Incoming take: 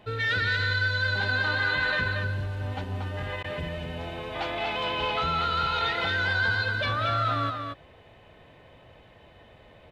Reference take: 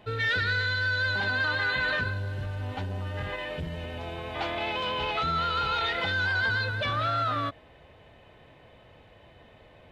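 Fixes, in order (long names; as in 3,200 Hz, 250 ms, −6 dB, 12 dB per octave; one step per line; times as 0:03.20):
repair the gap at 0:03.43, 11 ms
echo removal 233 ms −5 dB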